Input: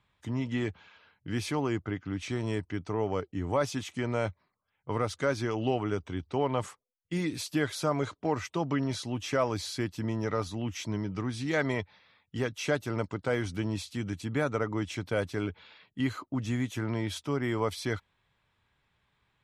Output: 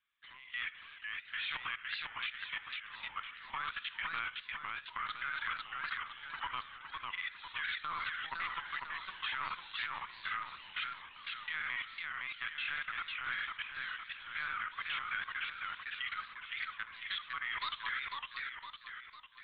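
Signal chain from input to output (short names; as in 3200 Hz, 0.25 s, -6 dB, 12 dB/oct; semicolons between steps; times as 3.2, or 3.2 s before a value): inverse Chebyshev high-pass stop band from 480 Hz, stop band 50 dB; flutter echo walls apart 11.4 m, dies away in 0.47 s; flange 1.7 Hz, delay 1.9 ms, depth 5 ms, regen -81%; LPC vocoder at 8 kHz pitch kept; on a send at -13 dB: reverb RT60 0.50 s, pre-delay 3 ms; on the sum: level quantiser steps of 16 dB; warbling echo 0.505 s, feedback 49%, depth 200 cents, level -3 dB; gain +9.5 dB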